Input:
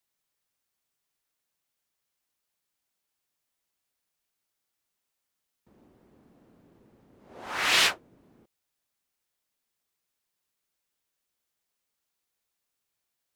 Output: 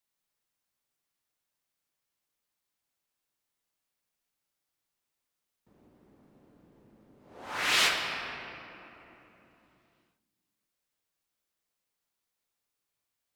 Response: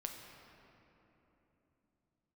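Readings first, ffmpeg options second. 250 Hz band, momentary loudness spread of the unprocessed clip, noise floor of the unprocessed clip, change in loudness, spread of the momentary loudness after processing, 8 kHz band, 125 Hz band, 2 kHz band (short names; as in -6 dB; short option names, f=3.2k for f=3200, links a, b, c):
-1.0 dB, 17 LU, -83 dBFS, -4.5 dB, 20 LU, -3.0 dB, -0.5 dB, -1.5 dB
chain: -filter_complex "[1:a]atrim=start_sample=2205[a];[0:a][a]afir=irnorm=-1:irlink=0"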